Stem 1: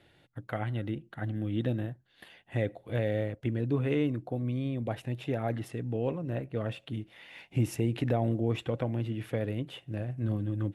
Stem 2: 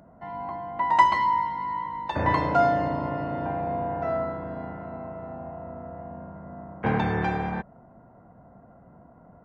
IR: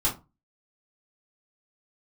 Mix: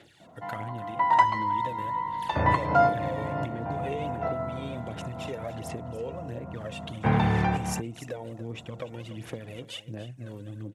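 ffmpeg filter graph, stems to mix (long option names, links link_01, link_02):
-filter_complex "[0:a]aphaser=in_gain=1:out_gain=1:delay=2.2:decay=0.66:speed=1.4:type=sinusoidal,acompressor=threshold=-34dB:ratio=4,equalizer=frequency=6800:width_type=o:width=1.2:gain=12.5,volume=1.5dB,asplit=3[link_01][link_02][link_03];[link_02]volume=-14dB[link_04];[1:a]asubboost=boost=5:cutoff=140,bandreject=frequency=1600:width=22,adynamicequalizer=threshold=0.0178:dfrequency=1700:dqfactor=0.7:tfrequency=1700:tqfactor=0.7:attack=5:release=100:ratio=0.375:range=2.5:mode=cutabove:tftype=highshelf,adelay=200,volume=2dB[link_05];[link_03]apad=whole_len=425545[link_06];[link_05][link_06]sidechaincompress=threshold=-38dB:ratio=8:attack=31:release=113[link_07];[link_04]aecho=0:1:290:1[link_08];[link_01][link_07][link_08]amix=inputs=3:normalize=0,highpass=89,lowshelf=frequency=200:gain=-6"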